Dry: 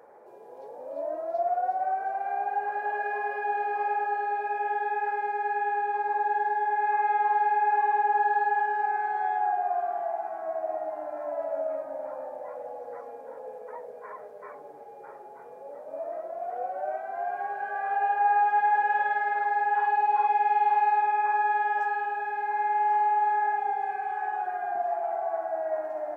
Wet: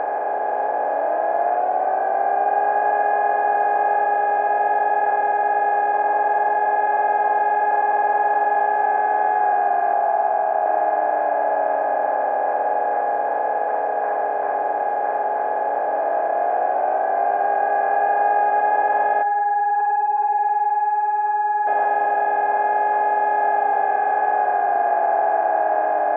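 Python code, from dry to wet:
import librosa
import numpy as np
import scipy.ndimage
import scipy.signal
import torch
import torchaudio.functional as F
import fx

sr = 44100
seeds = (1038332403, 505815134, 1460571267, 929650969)

y = fx.fixed_phaser(x, sr, hz=780.0, stages=4, at=(9.93, 10.66))
y = fx.spec_expand(y, sr, power=3.1, at=(19.21, 21.67), fade=0.02)
y = fx.bin_compress(y, sr, power=0.2)
y = scipy.signal.sosfilt(scipy.signal.butter(2, 2300.0, 'lowpass', fs=sr, output='sos'), y)
y = fx.low_shelf(y, sr, hz=400.0, db=4.0)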